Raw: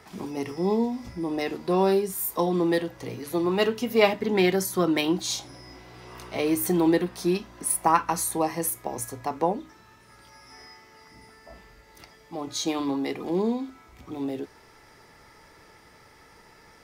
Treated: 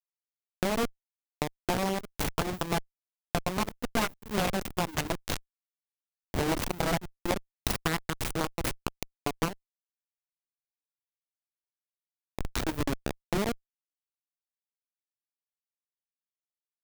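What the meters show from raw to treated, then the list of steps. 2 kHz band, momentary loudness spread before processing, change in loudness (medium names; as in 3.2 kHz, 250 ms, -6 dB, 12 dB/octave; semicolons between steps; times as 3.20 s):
-2.5 dB, 15 LU, -6.5 dB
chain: send-on-delta sampling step -18.5 dBFS; Chebyshev shaper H 4 -6 dB, 7 -12 dB, 8 -9 dB, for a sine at -4.5 dBFS; compression 6:1, threshold -26 dBFS, peak gain reduction 17.5 dB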